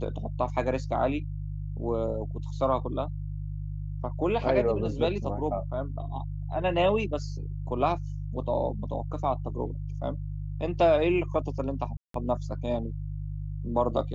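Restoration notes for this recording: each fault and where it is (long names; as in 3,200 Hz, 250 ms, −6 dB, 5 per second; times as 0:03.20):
mains hum 50 Hz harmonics 3 −34 dBFS
0:11.97–0:12.14: drop-out 173 ms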